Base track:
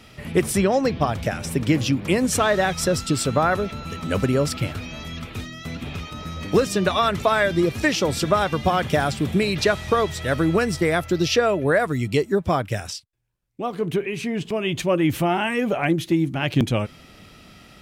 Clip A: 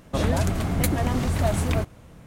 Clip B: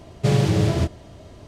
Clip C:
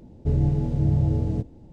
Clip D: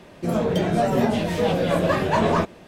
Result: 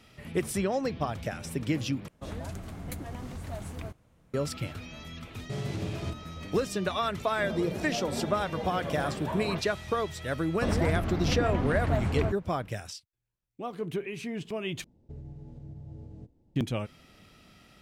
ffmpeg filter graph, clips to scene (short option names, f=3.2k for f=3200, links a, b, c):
-filter_complex "[1:a]asplit=2[a][b];[0:a]volume=-9.5dB[c];[2:a]alimiter=limit=-15.5dB:level=0:latency=1:release=280[d];[4:a]lowpass=1.8k[e];[b]lowpass=3k[f];[3:a]alimiter=limit=-19.5dB:level=0:latency=1:release=345[g];[c]asplit=3[h][i][j];[h]atrim=end=2.084[k];[a]atrim=end=2.26,asetpts=PTS-STARTPTS,volume=-15.5dB[l];[i]atrim=start=4.336:end=14.844[m];[g]atrim=end=1.72,asetpts=PTS-STARTPTS,volume=-16.5dB[n];[j]atrim=start=16.556[o];[d]atrim=end=1.47,asetpts=PTS-STARTPTS,volume=-9.5dB,afade=t=in:d=0.004:c=hsin,afade=t=out:st=1.466:d=0.004:c=hsin,adelay=5260[p];[e]atrim=end=2.67,asetpts=PTS-STARTPTS,volume=-14.5dB,afade=t=in:d=0.004:c=hsin,afade=t=out:st=2.666:d=0.004:c=hsin,adelay=7150[q];[f]atrim=end=2.26,asetpts=PTS-STARTPTS,volume=-5dB,afade=t=in:d=0.004:c=hsin,afade=t=out:st=2.256:d=0.004:c=hsin,adelay=10480[r];[k][l]acrossfade=d=0.004:c1=hsin:c2=hsin[s];[s][m]acrossfade=d=0.004:c1=hsin:c2=hsin[t];[t][n]acrossfade=d=0.004:c1=hsin:c2=hsin[u];[u][o]acrossfade=d=0.004:c1=hsin:c2=hsin[v];[v][p][q][r]amix=inputs=4:normalize=0"